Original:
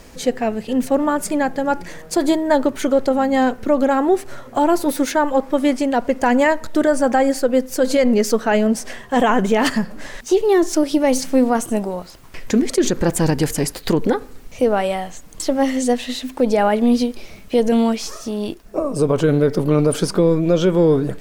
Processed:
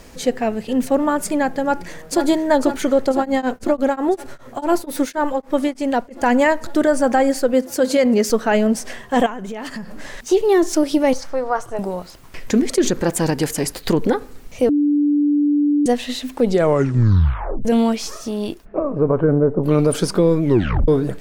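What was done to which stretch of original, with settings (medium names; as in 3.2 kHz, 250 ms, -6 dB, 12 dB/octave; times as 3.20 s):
1.62–2.26 s: echo throw 500 ms, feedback 80%, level -8.5 dB
3.11–6.31 s: tremolo of two beating tones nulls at 6.6 Hz -> 2.5 Hz
7.53–8.30 s: high-pass 48 Hz
9.26–10.18 s: compression 8:1, threshold -26 dBFS
11.13–11.79 s: FFT filter 140 Hz 0 dB, 210 Hz -24 dB, 400 Hz -5 dB, 1.3 kHz +3 dB, 2.7 kHz -10 dB, 5.3 kHz -6 dB, 8.9 kHz -16 dB
12.99–13.66 s: bass shelf 110 Hz -10.5 dB
14.69–15.86 s: bleep 292 Hz -13 dBFS
16.37 s: tape stop 1.28 s
18.64–19.63 s: low-pass 2.6 kHz -> 1 kHz 24 dB/octave
20.42 s: tape stop 0.46 s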